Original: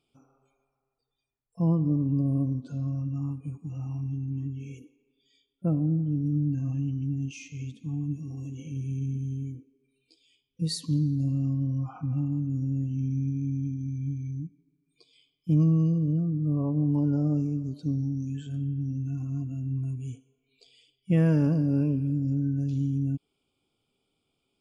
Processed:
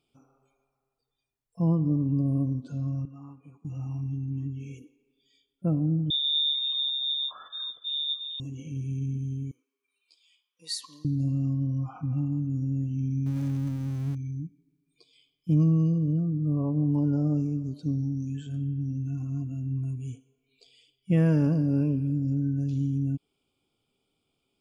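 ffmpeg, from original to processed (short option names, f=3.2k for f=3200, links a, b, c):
-filter_complex "[0:a]asettb=1/sr,asplit=3[a][b][c];[a]atrim=end=3.054[d];[b]atrim=start=3.05:end=3.65,asetpts=PTS-STARTPTS,afade=t=in:d=0.004:c=qsin,afade=t=out:st=0.596:d=0.004:c=qsin,bandpass=f=1.2k:t=q:w=0.74[e];[c]atrim=start=3.646[f];[d][e]acrossfade=d=0.004:c1=hsin:c2=qsin[g];[g][f]acrossfade=d=0.004:c1=qsin:c2=hsin,asettb=1/sr,asplit=3[h][i][j];[h]atrim=end=6.104[k];[i]atrim=start=6.1:end=8.4,asetpts=PTS-STARTPTS,afade=t=in:d=0.004:c=qsin,afade=t=out:st=2.296:d=0.004:c=qsin,lowpass=f=3.2k:t=q:w=0.5098,lowpass=f=3.2k:t=q:w=0.6013,lowpass=f=3.2k:t=q:w=0.9,lowpass=f=3.2k:t=q:w=2.563,afreqshift=-3800[l];[j]atrim=start=8.396[m];[k][l]acrossfade=d=0.004:c1=hsin:c2=qsin[n];[n][m]acrossfade=d=0.004:c1=qsin:c2=hsin,asettb=1/sr,asplit=3[o][p][q];[o]atrim=end=9.514[r];[p]atrim=start=9.51:end=11.05,asetpts=PTS-STARTPTS,afade=t=in:d=0.004:c=qsin,afade=t=out:st=1.536:d=0.004:c=qsin,highpass=f=1.1k:t=q:w=3.5[s];[q]atrim=start=11.046[t];[r][s]acrossfade=d=0.004:c1=hsin:c2=qsin[u];[u][t]acrossfade=d=0.004:c1=qsin:c2=hsin,asettb=1/sr,asplit=3[v][w][x];[v]atrim=end=13.264[y];[w]atrim=start=13.26:end=14.15,asetpts=PTS-STARTPTS,afade=t=in:d=0.004:c=qsin,afade=t=out:st=0.886:d=0.004:c=qsin,aeval=exprs='val(0)+0.5*0.0112*sgn(val(0))':c=same[z];[x]atrim=start=14.146[aa];[y][z]acrossfade=d=0.004:c1=hsin:c2=qsin[ab];[ab][aa]acrossfade=d=0.004:c1=qsin:c2=hsin"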